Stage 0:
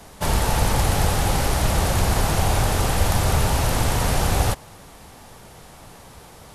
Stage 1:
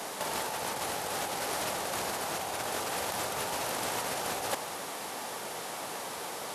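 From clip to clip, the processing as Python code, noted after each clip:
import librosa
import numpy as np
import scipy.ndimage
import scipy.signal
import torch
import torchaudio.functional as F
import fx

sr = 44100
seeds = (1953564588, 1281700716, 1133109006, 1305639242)

y = scipy.signal.sosfilt(scipy.signal.butter(2, 350.0, 'highpass', fs=sr, output='sos'), x)
y = fx.over_compress(y, sr, threshold_db=-31.0, ratio=-0.5)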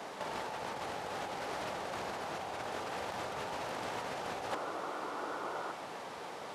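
y = fx.high_shelf(x, sr, hz=4200.0, db=-8.5)
y = fx.spec_paint(y, sr, seeds[0], shape='noise', start_s=4.51, length_s=1.21, low_hz=280.0, high_hz=1500.0, level_db=-37.0)
y = fx.peak_eq(y, sr, hz=12000.0, db=-12.0, octaves=1.0)
y = y * 10.0 ** (-4.0 / 20.0)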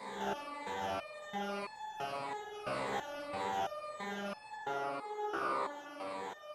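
y = fx.spec_ripple(x, sr, per_octave=0.97, drift_hz=-1.8, depth_db=16)
y = fx.rev_spring(y, sr, rt60_s=1.1, pass_ms=(45, 50), chirp_ms=35, drr_db=-2.5)
y = fx.resonator_held(y, sr, hz=3.0, low_hz=67.0, high_hz=870.0)
y = y * 10.0 ** (3.5 / 20.0)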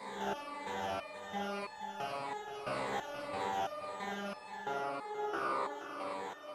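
y = fx.echo_feedback(x, sr, ms=477, feedback_pct=28, wet_db=-11.0)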